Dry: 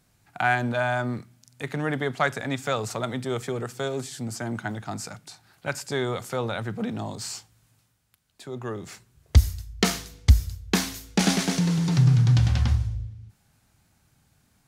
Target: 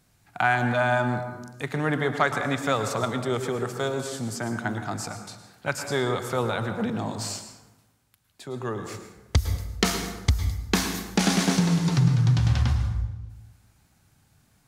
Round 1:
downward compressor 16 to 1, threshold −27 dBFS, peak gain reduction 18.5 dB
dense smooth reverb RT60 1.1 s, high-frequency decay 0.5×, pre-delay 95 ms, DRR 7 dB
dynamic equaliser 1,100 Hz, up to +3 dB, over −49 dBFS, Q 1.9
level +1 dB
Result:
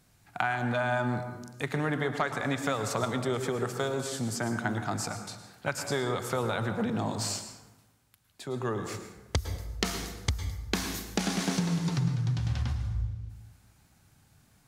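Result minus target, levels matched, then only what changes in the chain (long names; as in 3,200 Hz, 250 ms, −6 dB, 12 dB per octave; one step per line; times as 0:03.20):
downward compressor: peak gain reduction +9 dB
change: downward compressor 16 to 1, threshold −17.5 dBFS, peak gain reduction 10 dB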